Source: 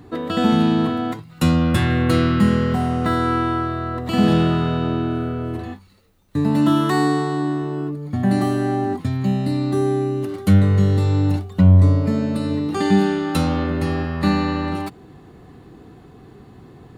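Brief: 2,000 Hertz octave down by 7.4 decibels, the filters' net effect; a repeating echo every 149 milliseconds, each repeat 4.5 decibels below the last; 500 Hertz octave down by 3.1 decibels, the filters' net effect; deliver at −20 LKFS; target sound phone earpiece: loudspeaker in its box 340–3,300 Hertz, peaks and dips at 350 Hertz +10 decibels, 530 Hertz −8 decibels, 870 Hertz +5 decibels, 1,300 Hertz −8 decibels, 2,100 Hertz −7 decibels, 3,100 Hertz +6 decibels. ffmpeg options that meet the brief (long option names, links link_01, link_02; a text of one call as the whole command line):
ffmpeg -i in.wav -af "highpass=340,equalizer=frequency=350:width_type=q:width=4:gain=10,equalizer=frequency=530:width_type=q:width=4:gain=-8,equalizer=frequency=870:width_type=q:width=4:gain=5,equalizer=frequency=1300:width_type=q:width=4:gain=-8,equalizer=frequency=2100:width_type=q:width=4:gain=-7,equalizer=frequency=3100:width_type=q:width=4:gain=6,lowpass=frequency=3300:width=0.5412,lowpass=frequency=3300:width=1.3066,equalizer=frequency=500:width_type=o:gain=-7,equalizer=frequency=2000:width_type=o:gain=-5,aecho=1:1:149|298|447|596|745|894|1043|1192|1341:0.596|0.357|0.214|0.129|0.0772|0.0463|0.0278|0.0167|0.01,volume=2.5dB" out.wav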